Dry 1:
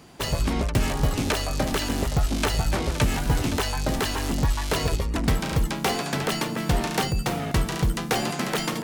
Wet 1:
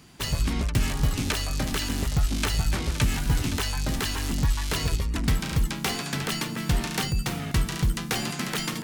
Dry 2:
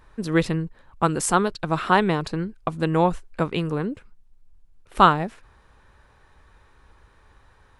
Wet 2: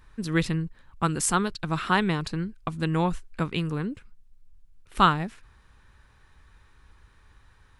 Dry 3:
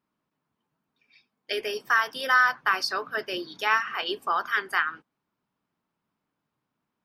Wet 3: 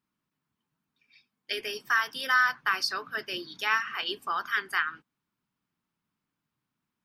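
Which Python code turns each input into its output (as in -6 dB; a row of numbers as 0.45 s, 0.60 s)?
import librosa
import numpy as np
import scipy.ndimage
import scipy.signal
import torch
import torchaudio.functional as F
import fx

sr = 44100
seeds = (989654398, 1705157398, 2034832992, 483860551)

y = fx.peak_eq(x, sr, hz=590.0, db=-9.5, octaves=1.8)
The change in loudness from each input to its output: -1.5 LU, -4.0 LU, -3.0 LU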